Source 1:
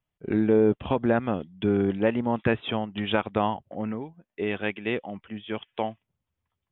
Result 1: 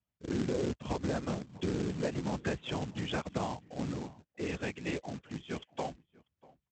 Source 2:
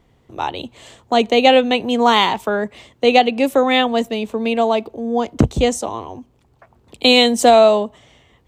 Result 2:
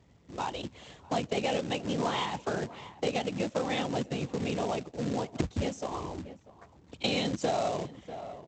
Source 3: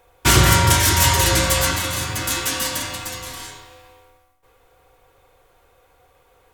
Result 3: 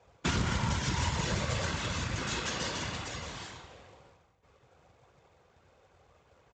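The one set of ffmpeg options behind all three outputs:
-filter_complex "[0:a]afftfilt=real='hypot(re,im)*cos(2*PI*random(0))':imag='hypot(re,im)*sin(2*PI*random(1))':win_size=512:overlap=0.75,highpass=f=52:w=0.5412,highpass=f=52:w=1.3066,bass=f=250:g=5,treble=f=4k:g=-4,aresample=16000,acrusher=bits=3:mode=log:mix=0:aa=0.000001,aresample=44100,asplit=2[a][b];[b]adelay=641.4,volume=-24dB,highshelf=f=4k:g=-14.4[c];[a][c]amix=inputs=2:normalize=0,acompressor=threshold=-29dB:ratio=3,volume=-1.5dB"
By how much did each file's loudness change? -10.0, -17.0, -16.0 LU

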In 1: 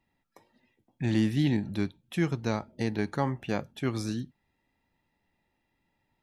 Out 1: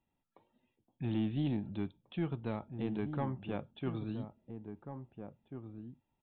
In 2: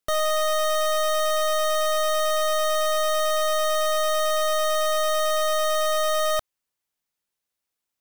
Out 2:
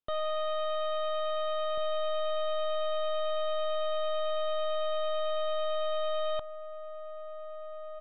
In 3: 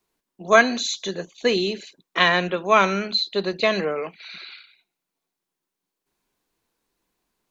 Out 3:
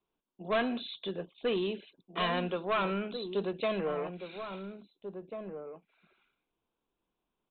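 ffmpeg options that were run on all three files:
-filter_complex "[0:a]equalizer=f=1.9k:w=2.8:g=-11,aresample=8000,asoftclip=type=tanh:threshold=-18dB,aresample=44100,asplit=2[a][b];[b]adelay=1691,volume=-8dB,highshelf=f=4k:g=-38[c];[a][c]amix=inputs=2:normalize=0,volume=-6.5dB"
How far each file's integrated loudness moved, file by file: -8.5, -9.5, -13.5 LU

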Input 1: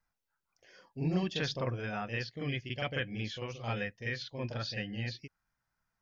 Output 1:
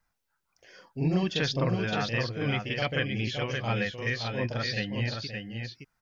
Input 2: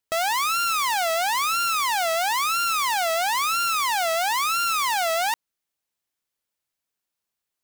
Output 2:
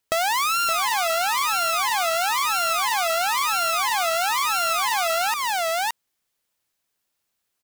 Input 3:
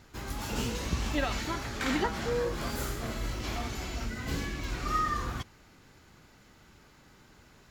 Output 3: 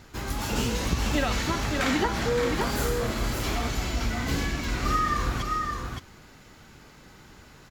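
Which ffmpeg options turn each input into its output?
-af "aecho=1:1:568:0.531,acompressor=threshold=-26dB:ratio=6,volume=6dB"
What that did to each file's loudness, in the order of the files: +6.5, +0.5, +5.5 LU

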